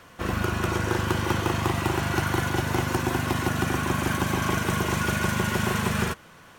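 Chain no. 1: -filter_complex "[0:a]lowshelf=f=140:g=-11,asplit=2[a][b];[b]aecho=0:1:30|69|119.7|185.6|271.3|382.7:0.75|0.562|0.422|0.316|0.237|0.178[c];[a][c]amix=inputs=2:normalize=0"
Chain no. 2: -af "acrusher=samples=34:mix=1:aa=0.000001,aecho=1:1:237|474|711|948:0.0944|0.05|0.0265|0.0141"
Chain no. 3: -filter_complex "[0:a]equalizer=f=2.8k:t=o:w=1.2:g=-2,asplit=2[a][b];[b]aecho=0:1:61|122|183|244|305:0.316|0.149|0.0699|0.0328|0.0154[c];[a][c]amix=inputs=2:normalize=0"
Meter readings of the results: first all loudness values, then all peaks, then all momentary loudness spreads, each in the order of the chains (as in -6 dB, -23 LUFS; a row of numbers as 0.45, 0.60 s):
-24.0, -26.5, -25.5 LUFS; -9.5, -12.0, -12.0 dBFS; 2, 2, 2 LU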